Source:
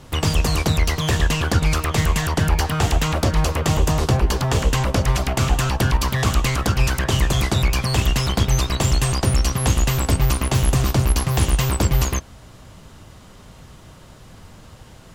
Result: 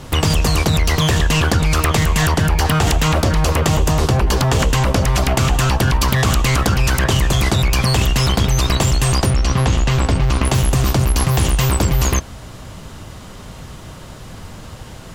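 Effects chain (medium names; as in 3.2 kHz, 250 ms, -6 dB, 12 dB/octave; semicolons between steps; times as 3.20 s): 9.30–10.45 s: Bessel low-pass 4.8 kHz, order 2; in parallel at +2 dB: compressor with a negative ratio -23 dBFS, ratio -1; on the sum: trim -1 dB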